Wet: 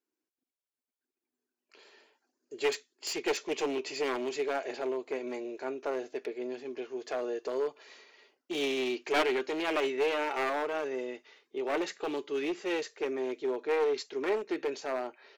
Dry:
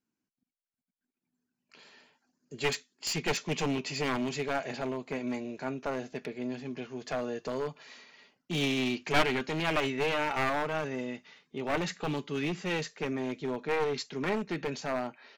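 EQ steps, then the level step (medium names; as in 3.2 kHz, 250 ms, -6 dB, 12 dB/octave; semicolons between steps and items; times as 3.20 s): resonant low shelf 250 Hz -13 dB, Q 3; -3.0 dB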